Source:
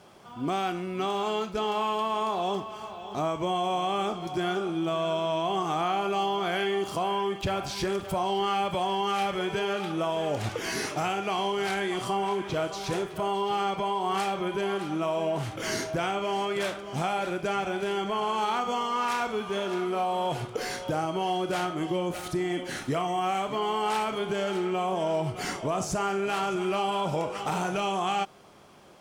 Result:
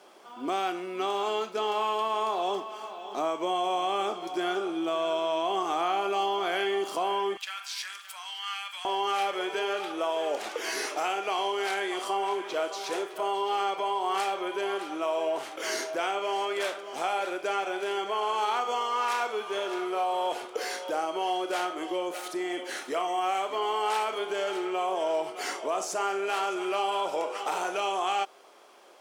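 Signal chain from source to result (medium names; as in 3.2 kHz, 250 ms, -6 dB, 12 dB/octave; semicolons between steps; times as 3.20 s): high-pass 290 Hz 24 dB/octave, from 7.37 s 1.4 kHz, from 8.85 s 360 Hz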